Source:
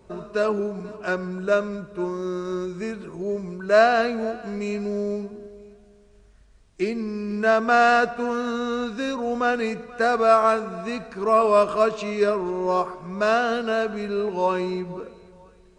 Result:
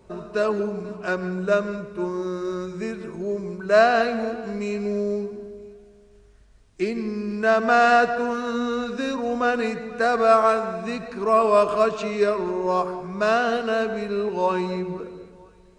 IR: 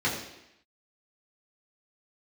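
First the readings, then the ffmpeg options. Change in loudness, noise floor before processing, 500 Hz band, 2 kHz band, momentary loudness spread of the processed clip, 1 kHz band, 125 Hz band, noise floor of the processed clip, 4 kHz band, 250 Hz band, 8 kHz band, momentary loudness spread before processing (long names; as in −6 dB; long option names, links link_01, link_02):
+0.5 dB, −53 dBFS, +0.5 dB, +0.5 dB, 13 LU, +0.5 dB, +1.0 dB, −52 dBFS, 0.0 dB, +0.5 dB, 0.0 dB, 13 LU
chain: -filter_complex "[0:a]asplit=2[link_01][link_02];[1:a]atrim=start_sample=2205,adelay=137[link_03];[link_02][link_03]afir=irnorm=-1:irlink=0,volume=-23dB[link_04];[link_01][link_04]amix=inputs=2:normalize=0"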